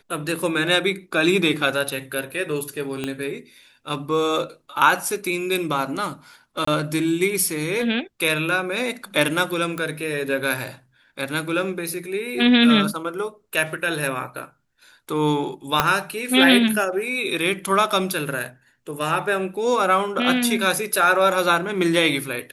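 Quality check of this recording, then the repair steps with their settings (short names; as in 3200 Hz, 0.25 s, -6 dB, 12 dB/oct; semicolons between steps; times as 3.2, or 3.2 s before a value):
3.04 pop -13 dBFS
6.65–6.67 gap 24 ms
9.78 pop -15 dBFS
15.8 pop -1 dBFS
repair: de-click; interpolate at 6.65, 24 ms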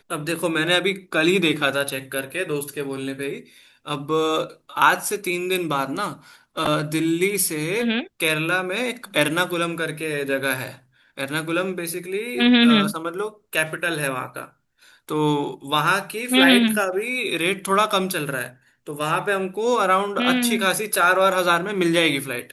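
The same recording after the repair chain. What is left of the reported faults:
3.04 pop
15.8 pop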